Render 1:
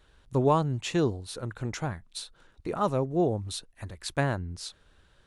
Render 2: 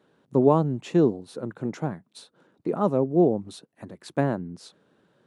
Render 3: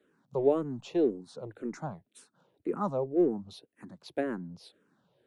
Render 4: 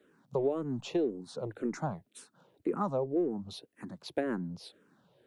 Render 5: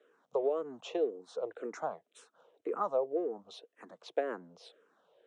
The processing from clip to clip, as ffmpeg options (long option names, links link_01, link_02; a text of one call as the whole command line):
ffmpeg -i in.wav -af "highpass=frequency=170:width=0.5412,highpass=frequency=170:width=1.3066,tiltshelf=frequency=970:gain=9" out.wav
ffmpeg -i in.wav -filter_complex "[0:a]acrossover=split=230[link_01][link_02];[link_01]asoftclip=type=tanh:threshold=-36dB[link_03];[link_03][link_02]amix=inputs=2:normalize=0,asplit=2[link_04][link_05];[link_05]afreqshift=-1.9[link_06];[link_04][link_06]amix=inputs=2:normalize=1,volume=-3.5dB" out.wav
ffmpeg -i in.wav -af "acompressor=threshold=-31dB:ratio=6,volume=4dB" out.wav
ffmpeg -i in.wav -af "highpass=470,equalizer=frequency=470:width_type=q:width=4:gain=10,equalizer=frequency=670:width_type=q:width=4:gain=6,equalizer=frequency=1200:width_type=q:width=4:gain=5,equalizer=frequency=3100:width_type=q:width=4:gain=3,equalizer=frequency=4600:width_type=q:width=4:gain=-7,lowpass=frequency=7800:width=0.5412,lowpass=frequency=7800:width=1.3066,volume=-3dB" out.wav